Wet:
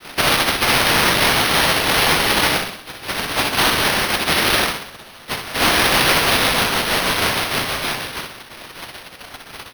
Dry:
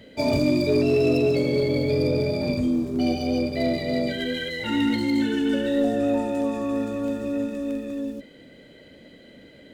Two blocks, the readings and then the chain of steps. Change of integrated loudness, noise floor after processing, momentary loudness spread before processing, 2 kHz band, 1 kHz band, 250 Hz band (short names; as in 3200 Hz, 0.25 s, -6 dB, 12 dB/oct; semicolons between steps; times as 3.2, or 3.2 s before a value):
+8.0 dB, -41 dBFS, 8 LU, +17.0 dB, +16.5 dB, -5.0 dB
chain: spectral contrast raised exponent 2.7; steep high-pass 460 Hz 36 dB/oct; dynamic EQ 620 Hz, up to -6 dB, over -44 dBFS, Q 5.6; comb 1.6 ms, depth 99%; compressor 3:1, threshold -29 dBFS, peak gain reduction 6.5 dB; vibrato 0.38 Hz 11 cents; noise vocoder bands 1; on a send: flutter echo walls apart 10.8 m, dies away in 0.67 s; on the sum: flange 1.4 Hz, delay 7.9 ms, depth 5.3 ms, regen -70%; careless resampling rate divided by 6×, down none, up hold; maximiser +22.5 dB; gain -4.5 dB